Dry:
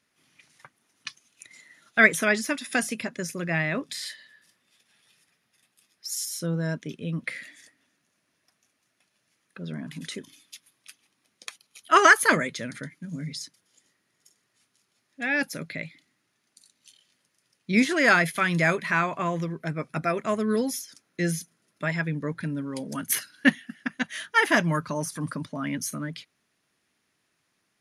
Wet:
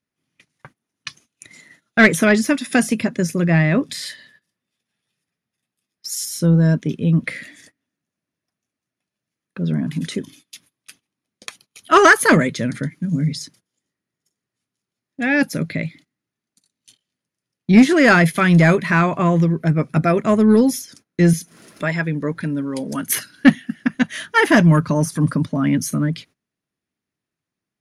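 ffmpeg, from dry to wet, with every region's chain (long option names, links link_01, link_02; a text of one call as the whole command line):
ffmpeg -i in.wav -filter_complex "[0:a]asettb=1/sr,asplit=3[link_01][link_02][link_03];[link_01]atrim=end=21.334[link_04];[link_02]atrim=start=21.33:end=23.18,asetpts=PTS-STARTPTS,afade=type=in:duration=0.004:curve=qsin,afade=type=out:start_time=1.846:duration=0.004:curve=qsin,equalizer=frequency=110:width=0.5:gain=-10.5,acompressor=mode=upward:threshold=-36dB:ratio=2.5:attack=3.2:release=140:knee=2.83:detection=peak[link_05];[link_03]atrim=start=23.176[link_06];[link_04][link_05]acrossfade=duration=0.004:curve1=hsin:curve2=qsin[link_07];[link_07][link_06]acrossfade=duration=0.004:curve1=qsin:curve2=hsin,agate=range=-20dB:threshold=-54dB:ratio=16:detection=peak,lowshelf=frequency=450:gain=11.5,acontrast=57,volume=-1dB" out.wav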